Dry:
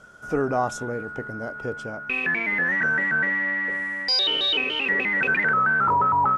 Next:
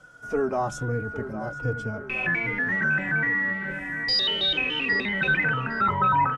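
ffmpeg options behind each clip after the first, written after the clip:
-filter_complex "[0:a]acrossover=split=180[s0][s1];[s0]dynaudnorm=f=340:g=3:m=3.55[s2];[s2][s1]amix=inputs=2:normalize=0,asplit=2[s3][s4];[s4]adelay=809,lowpass=f=2400:p=1,volume=0.282,asplit=2[s5][s6];[s6]adelay=809,lowpass=f=2400:p=1,volume=0.55,asplit=2[s7][s8];[s8]adelay=809,lowpass=f=2400:p=1,volume=0.55,asplit=2[s9][s10];[s10]adelay=809,lowpass=f=2400:p=1,volume=0.55,asplit=2[s11][s12];[s12]adelay=809,lowpass=f=2400:p=1,volume=0.55,asplit=2[s13][s14];[s14]adelay=809,lowpass=f=2400:p=1,volume=0.55[s15];[s3][s5][s7][s9][s11][s13][s15]amix=inputs=7:normalize=0,asplit=2[s16][s17];[s17]adelay=3.5,afreqshift=-1.3[s18];[s16][s18]amix=inputs=2:normalize=1"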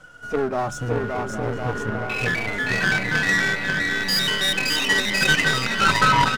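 -af "aeval=exprs='if(lt(val(0),0),0.447*val(0),val(0))':c=same,aecho=1:1:570|1054|1466|1816|2114:0.631|0.398|0.251|0.158|0.1,aeval=exprs='0.335*(cos(1*acos(clip(val(0)/0.335,-1,1)))-cos(1*PI/2))+0.0376*(cos(8*acos(clip(val(0)/0.335,-1,1)))-cos(8*PI/2))':c=same,volume=2.24"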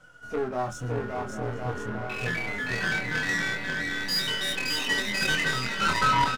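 -filter_complex "[0:a]asplit=2[s0][s1];[s1]adelay=24,volume=0.631[s2];[s0][s2]amix=inputs=2:normalize=0,volume=0.398"

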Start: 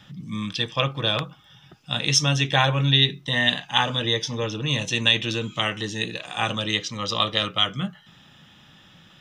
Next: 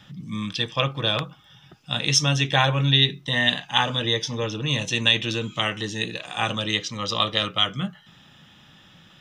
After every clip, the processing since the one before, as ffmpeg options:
-af anull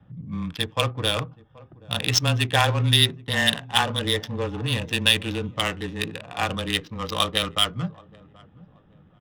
-af "afreqshift=-17,aecho=1:1:778|1556|2334:0.1|0.034|0.0116,adynamicsmooth=sensitivity=2:basefreq=710"

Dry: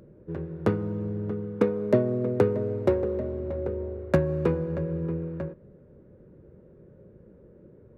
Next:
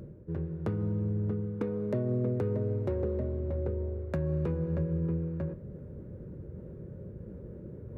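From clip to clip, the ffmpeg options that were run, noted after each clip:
-af "equalizer=f=81:w=0.47:g=10,alimiter=limit=0.178:level=0:latency=1:release=126,areverse,acompressor=mode=upward:threshold=0.0501:ratio=2.5,areverse,volume=0.473"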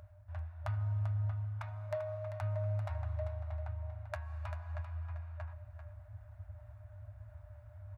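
-af "highpass=86,aecho=1:1:392:0.355,afftfilt=real='re*(1-between(b*sr/4096,110,590))':imag='im*(1-between(b*sr/4096,110,590))':win_size=4096:overlap=0.75,volume=1.12"

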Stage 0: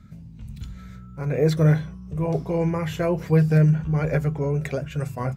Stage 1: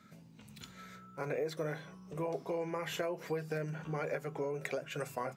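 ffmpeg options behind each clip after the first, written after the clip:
-af "highpass=370,acompressor=threshold=0.02:ratio=6"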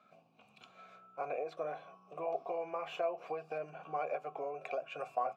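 -filter_complex "[0:a]asplit=3[s0][s1][s2];[s0]bandpass=f=730:t=q:w=8,volume=1[s3];[s1]bandpass=f=1090:t=q:w=8,volume=0.501[s4];[s2]bandpass=f=2440:t=q:w=8,volume=0.355[s5];[s3][s4][s5]amix=inputs=3:normalize=0,volume=3.35"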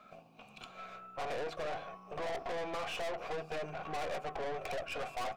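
-af "aeval=exprs='(tanh(224*val(0)+0.55)-tanh(0.55))/224':c=same,volume=3.55"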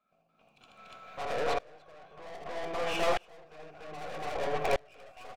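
-filter_complex "[0:a]asplit=2[s0][s1];[s1]aecho=0:1:78.72|288.6:0.562|1[s2];[s0][s2]amix=inputs=2:normalize=0,aeval=exprs='val(0)*pow(10,-30*if(lt(mod(-0.63*n/s,1),2*abs(-0.63)/1000),1-mod(-0.63*n/s,1)/(2*abs(-0.63)/1000),(mod(-0.63*n/s,1)-2*abs(-0.63)/1000)/(1-2*abs(-0.63)/1000))/20)':c=same,volume=2.51"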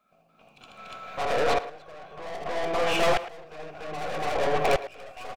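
-filter_complex "[0:a]asplit=2[s0][s1];[s1]adelay=110,highpass=300,lowpass=3400,asoftclip=type=hard:threshold=0.0531,volume=0.178[s2];[s0][s2]amix=inputs=2:normalize=0,asoftclip=type=tanh:threshold=0.0668,volume=2.66"

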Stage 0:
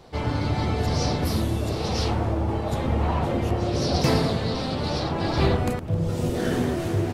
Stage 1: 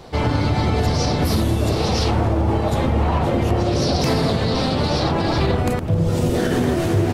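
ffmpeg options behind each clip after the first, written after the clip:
-af "alimiter=limit=0.119:level=0:latency=1:release=80,volume=2.66"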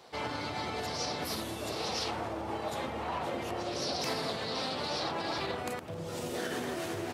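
-af "highpass=f=790:p=1,volume=0.355"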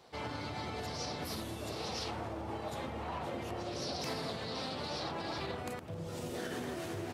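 -af "lowshelf=f=190:g=8,volume=0.531"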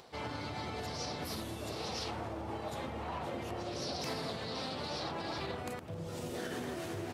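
-af "acompressor=mode=upward:threshold=0.00251:ratio=2.5"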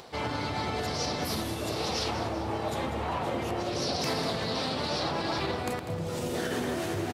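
-af "aecho=1:1:196|392|588|784|980:0.251|0.128|0.0653|0.0333|0.017,volume=2.51"

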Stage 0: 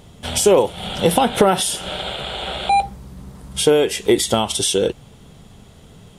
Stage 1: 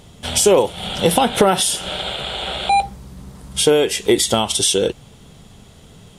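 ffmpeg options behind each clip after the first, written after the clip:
-af "equalizer=f=6000:t=o:w=2.6:g=3.5"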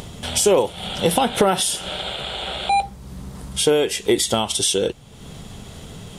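-af "acompressor=mode=upward:threshold=0.0708:ratio=2.5,volume=0.708"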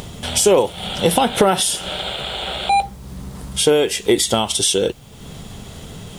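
-af "acrusher=bits=8:mix=0:aa=0.000001,volume=1.33"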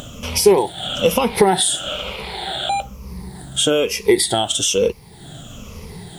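-af "afftfilt=real='re*pow(10,14/40*sin(2*PI*(0.85*log(max(b,1)*sr/1024/100)/log(2)-(-1.1)*(pts-256)/sr)))':imag='im*pow(10,14/40*sin(2*PI*(0.85*log(max(b,1)*sr/1024/100)/log(2)-(-1.1)*(pts-256)/sr)))':win_size=1024:overlap=0.75,volume=0.708"

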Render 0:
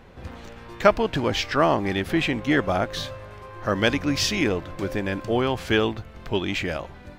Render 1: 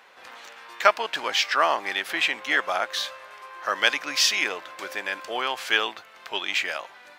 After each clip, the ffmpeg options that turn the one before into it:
-af "highpass=990,volume=1.58"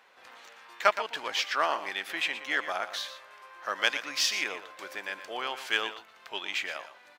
-af "aeval=exprs='0.891*(cos(1*acos(clip(val(0)/0.891,-1,1)))-cos(1*PI/2))+0.0282*(cos(7*acos(clip(val(0)/0.891,-1,1)))-cos(7*PI/2))':c=same,aecho=1:1:119:0.251,volume=0.562"

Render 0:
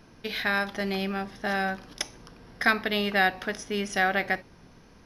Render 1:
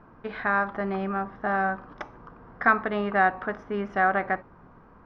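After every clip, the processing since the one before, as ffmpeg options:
-af "lowpass=f=1200:t=q:w=2.7"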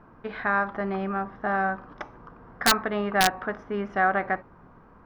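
-af "aeval=exprs='(mod(3.16*val(0)+1,2)-1)/3.16':c=same"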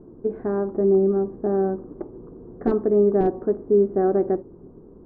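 -af "lowpass=f=380:t=q:w=4.2,volume=1.58"

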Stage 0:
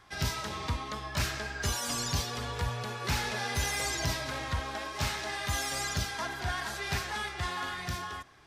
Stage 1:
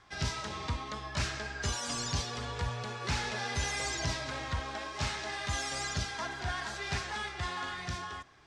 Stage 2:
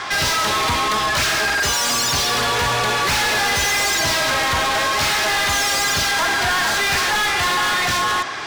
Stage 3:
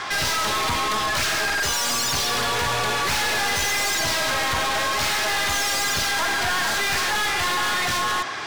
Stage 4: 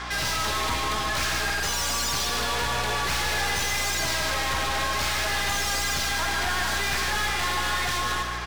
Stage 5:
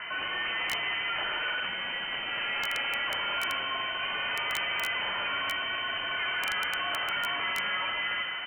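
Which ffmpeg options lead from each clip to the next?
-af "lowpass=f=8300:w=0.5412,lowpass=f=8300:w=1.3066,volume=0.794"
-filter_complex "[0:a]asplit=2[s0][s1];[s1]highpass=f=720:p=1,volume=50.1,asoftclip=type=tanh:threshold=0.0944[s2];[s0][s2]amix=inputs=2:normalize=0,lowpass=f=7600:p=1,volume=0.501,volume=2.51"
-af "aeval=exprs='clip(val(0),-1,0.0794)':c=same,volume=0.75"
-af "aeval=exprs='val(0)+0.0178*(sin(2*PI*60*n/s)+sin(2*PI*2*60*n/s)/2+sin(2*PI*3*60*n/s)/3+sin(2*PI*4*60*n/s)/4+sin(2*PI*5*60*n/s)/5)':c=same,aecho=1:1:151|302|453|604|755:0.422|0.173|0.0709|0.0291|0.0119,volume=0.596"
-af "lowpass=f=2600:t=q:w=0.5098,lowpass=f=2600:t=q:w=0.6013,lowpass=f=2600:t=q:w=0.9,lowpass=f=2600:t=q:w=2.563,afreqshift=-3100,aeval=exprs='(mod(7.08*val(0)+1,2)-1)/7.08':c=same,volume=0.631"

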